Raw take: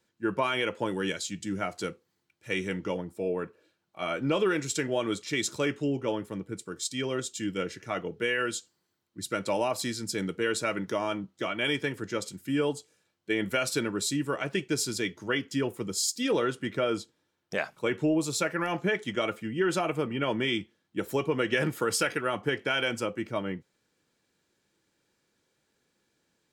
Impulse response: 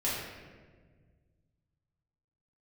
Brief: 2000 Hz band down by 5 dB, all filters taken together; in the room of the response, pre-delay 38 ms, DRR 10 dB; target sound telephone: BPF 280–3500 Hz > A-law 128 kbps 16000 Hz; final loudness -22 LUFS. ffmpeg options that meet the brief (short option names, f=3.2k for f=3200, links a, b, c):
-filter_complex "[0:a]equalizer=f=2k:t=o:g=-6,asplit=2[a][b];[1:a]atrim=start_sample=2205,adelay=38[c];[b][c]afir=irnorm=-1:irlink=0,volume=-17.5dB[d];[a][d]amix=inputs=2:normalize=0,highpass=280,lowpass=3.5k,volume=10.5dB" -ar 16000 -c:a pcm_alaw